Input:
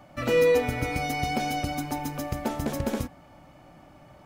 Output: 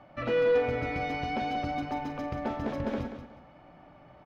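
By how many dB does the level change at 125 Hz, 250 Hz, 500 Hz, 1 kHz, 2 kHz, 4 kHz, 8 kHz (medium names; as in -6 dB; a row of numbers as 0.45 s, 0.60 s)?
-5.5 dB, -3.5 dB, -3.0 dB, -2.0 dB, -4.0 dB, -7.0 dB, under -20 dB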